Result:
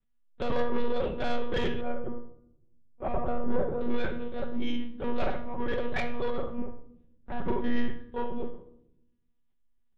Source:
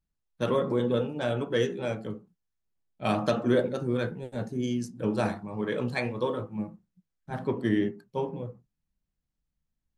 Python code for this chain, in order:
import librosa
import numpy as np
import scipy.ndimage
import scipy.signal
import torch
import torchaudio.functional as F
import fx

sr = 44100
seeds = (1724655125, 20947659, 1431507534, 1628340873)

y = x + 0.43 * np.pad(x, (int(5.4 * sr / 1000.0), 0))[:len(x)]
y = fx.room_flutter(y, sr, wall_m=5.3, rt60_s=0.36)
y = fx.lpc_monotone(y, sr, seeds[0], pitch_hz=240.0, order=8)
y = 10.0 ** (-23.5 / 20.0) * np.tanh(y / 10.0 ** (-23.5 / 20.0))
y = fx.lowpass(y, sr, hz=1100.0, slope=12, at=(1.81, 3.81))
y = fx.room_shoebox(y, sr, seeds[1], volume_m3=2200.0, walls='furnished', distance_m=1.1)